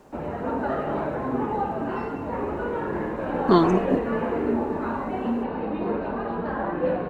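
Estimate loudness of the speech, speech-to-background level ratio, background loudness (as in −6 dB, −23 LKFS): −22.5 LKFS, 5.0 dB, −27.5 LKFS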